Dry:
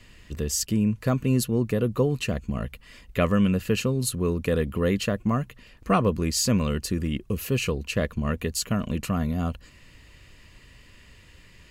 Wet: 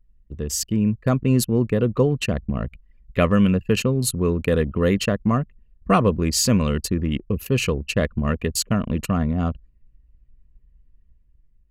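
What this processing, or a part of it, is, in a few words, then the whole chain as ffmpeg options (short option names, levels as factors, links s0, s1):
voice memo with heavy noise removal: -af "anlmdn=10,dynaudnorm=f=310:g=5:m=1.68"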